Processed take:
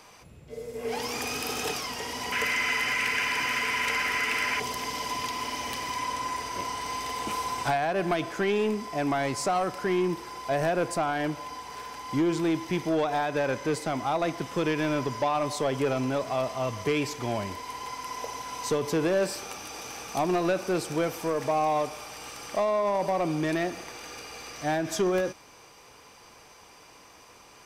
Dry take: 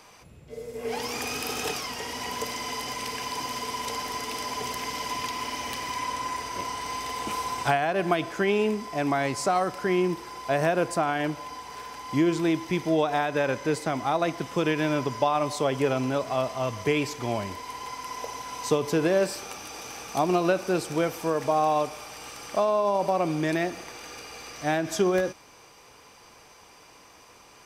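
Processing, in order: 2.32–4.60 s: high-order bell 1.9 kHz +14.5 dB 1.3 oct; saturation -18.5 dBFS, distortion -16 dB

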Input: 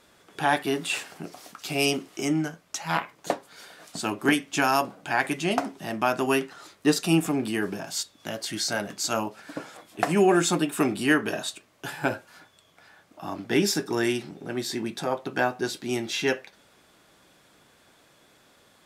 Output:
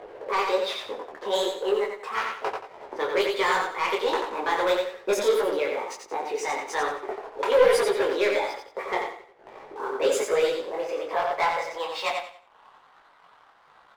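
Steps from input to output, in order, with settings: bass shelf 340 Hz -5 dB; level-controlled noise filter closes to 400 Hz, open at -21 dBFS; upward compressor, threshold -30 dBFS; speed mistake 33 rpm record played at 45 rpm; overdrive pedal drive 9 dB, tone 2.3 kHz, clips at -13 dBFS; high-pass sweep 440 Hz -> 1.2 kHz, 10.49–12.88 s; waveshaping leveller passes 2; flange 0.13 Hz, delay 1.7 ms, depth 9.1 ms, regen -73%; feedback delay 89 ms, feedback 31%, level -5 dB; detune thickener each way 40 cents

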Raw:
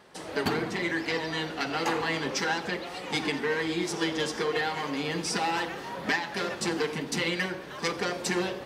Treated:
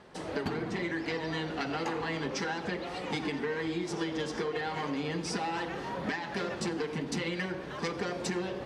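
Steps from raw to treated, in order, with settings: low-pass 10 kHz 12 dB/octave; tilt EQ -1.5 dB/octave; compression, threshold -30 dBFS, peak gain reduction 9 dB

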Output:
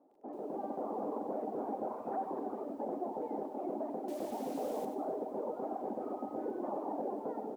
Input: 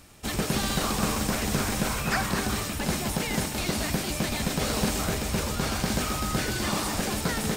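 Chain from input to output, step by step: Chebyshev band-pass 270–830 Hz, order 3; hum notches 50/100/150/200/250/300/350/400/450 Hz; reverb removal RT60 1.1 s; peak limiter -31.5 dBFS, peak gain reduction 9 dB; level rider gain up to 7 dB; 4.08–4.85 s: word length cut 8-bit, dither none; vibrato 14 Hz 6.1 cents; feedback delay 101 ms, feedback 37%, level -15.5 dB; Schroeder reverb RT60 2.5 s, combs from 30 ms, DRR 15.5 dB; bit-crushed delay 93 ms, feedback 35%, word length 10-bit, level -9.5 dB; trim -5 dB

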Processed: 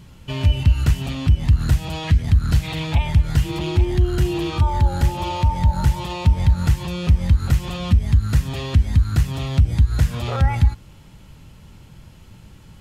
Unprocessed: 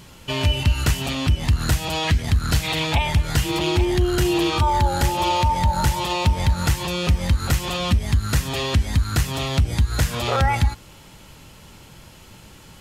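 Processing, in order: tone controls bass +10 dB, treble -3 dB; trim -6 dB

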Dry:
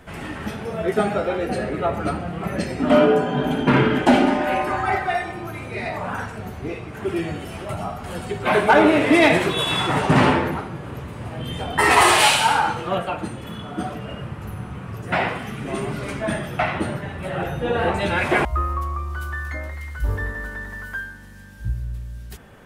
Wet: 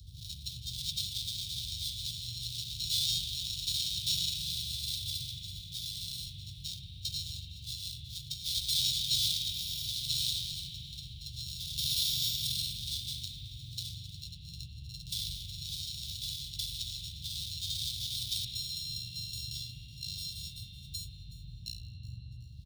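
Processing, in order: sorted samples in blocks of 32 samples; spectral gate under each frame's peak -15 dB weak; gate -37 dBFS, range -47 dB; Chebyshev band-stop 160–3600 Hz, order 5; three-band isolator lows -22 dB, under 380 Hz, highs -21 dB, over 4 kHz; upward compressor, threshold -40 dBFS; frequency-shifting echo 372 ms, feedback 51%, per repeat +56 Hz, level -19.5 dB; band noise 46–140 Hz -56 dBFS; spring tank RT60 3.7 s, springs 42 ms, chirp 50 ms, DRR 2.5 dB; trim +7 dB

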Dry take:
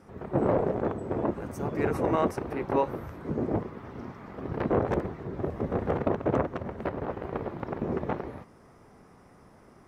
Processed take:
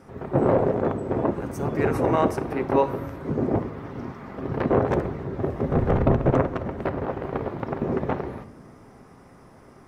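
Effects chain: 5.68–6.30 s: octave divider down 1 oct, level +4 dB; reverberation, pre-delay 8 ms, DRR 11 dB; trim +4.5 dB

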